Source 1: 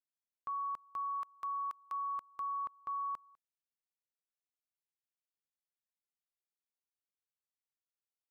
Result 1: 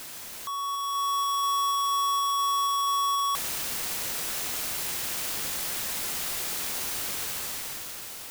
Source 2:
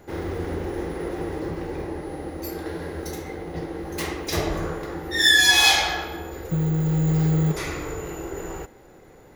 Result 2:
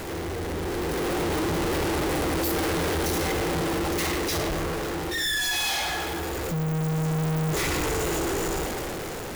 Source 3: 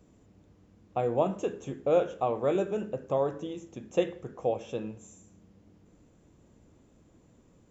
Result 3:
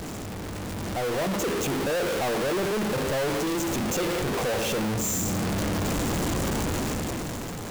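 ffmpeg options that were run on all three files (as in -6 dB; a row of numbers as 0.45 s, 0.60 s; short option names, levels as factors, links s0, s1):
-af "aeval=exprs='val(0)+0.5*0.0841*sgn(val(0))':c=same,dynaudnorm=f=190:g=11:m=3.98,asoftclip=type=tanh:threshold=0.141,volume=0.422"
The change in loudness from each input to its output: +12.0 LU, -3.5 LU, +3.5 LU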